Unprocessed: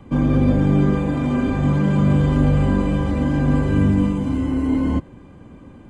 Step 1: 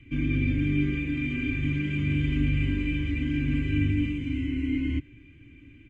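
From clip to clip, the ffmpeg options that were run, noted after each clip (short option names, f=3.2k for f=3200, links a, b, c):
-af "firequalizer=gain_entry='entry(130,0);entry(190,-17);entry(290,2);entry(480,-20);entry(860,-29);entry(1500,-7);entry(2300,14);entry(4300,-8);entry(6600,-7);entry(9400,-16)':delay=0.05:min_phase=1,volume=-6dB"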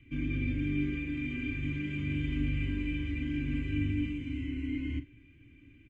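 -filter_complex "[0:a]asplit=2[a][b];[b]adelay=44,volume=-13dB[c];[a][c]amix=inputs=2:normalize=0,volume=-6.5dB"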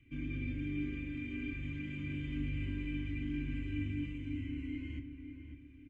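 -filter_complex "[0:a]asplit=2[a][b];[b]adelay=549,lowpass=f=1.7k:p=1,volume=-7.5dB,asplit=2[c][d];[d]adelay=549,lowpass=f=1.7k:p=1,volume=0.41,asplit=2[e][f];[f]adelay=549,lowpass=f=1.7k:p=1,volume=0.41,asplit=2[g][h];[h]adelay=549,lowpass=f=1.7k:p=1,volume=0.41,asplit=2[i][j];[j]adelay=549,lowpass=f=1.7k:p=1,volume=0.41[k];[a][c][e][g][i][k]amix=inputs=6:normalize=0,volume=-6.5dB"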